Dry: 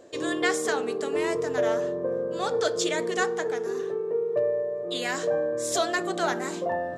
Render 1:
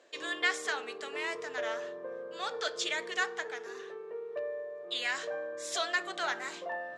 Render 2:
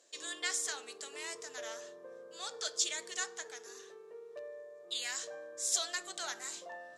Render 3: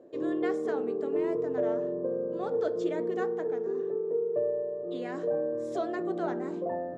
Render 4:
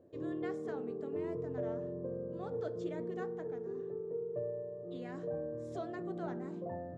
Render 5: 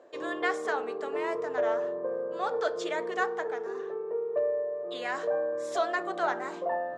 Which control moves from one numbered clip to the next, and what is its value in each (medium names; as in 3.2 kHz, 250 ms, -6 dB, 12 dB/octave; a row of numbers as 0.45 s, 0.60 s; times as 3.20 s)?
band-pass filter, frequency: 2.5 kHz, 6.7 kHz, 290 Hz, 100 Hz, 970 Hz